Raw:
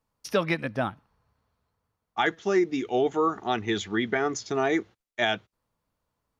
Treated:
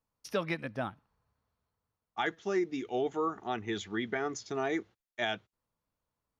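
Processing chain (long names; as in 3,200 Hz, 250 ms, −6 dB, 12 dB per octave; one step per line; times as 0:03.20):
0:03.24–0:03.73: dynamic equaliser 4,400 Hz, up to −7 dB, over −51 dBFS, Q 1.8
level −7.5 dB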